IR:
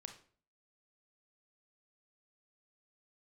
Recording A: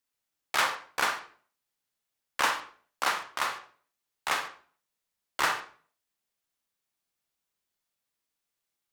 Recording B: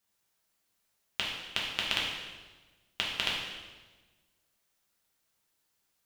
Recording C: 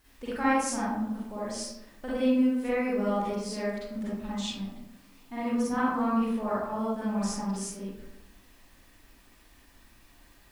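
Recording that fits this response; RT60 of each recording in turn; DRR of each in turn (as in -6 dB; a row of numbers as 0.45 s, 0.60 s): A; 0.45 s, 1.3 s, 0.85 s; 5.5 dB, -4.5 dB, -9.5 dB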